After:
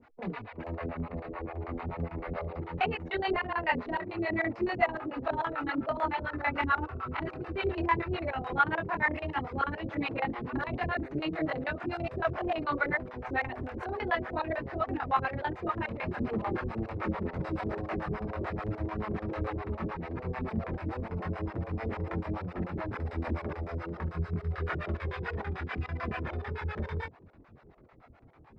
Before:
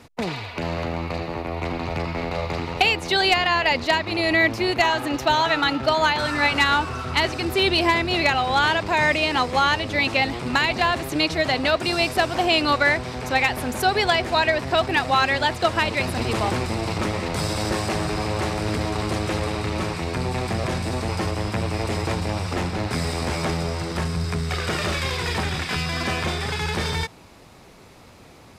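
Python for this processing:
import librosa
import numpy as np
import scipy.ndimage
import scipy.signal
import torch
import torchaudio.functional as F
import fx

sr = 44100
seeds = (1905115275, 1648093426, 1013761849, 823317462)

y = fx.filter_lfo_lowpass(x, sr, shape='square', hz=9.0, low_hz=410.0, high_hz=1600.0, q=1.4)
y = fx.chorus_voices(y, sr, voices=4, hz=0.36, base_ms=25, depth_ms=3.2, mix_pct=55)
y = fx.harmonic_tremolo(y, sr, hz=6.9, depth_pct=100, crossover_hz=500.0)
y = F.gain(torch.from_numpy(y), -2.0).numpy()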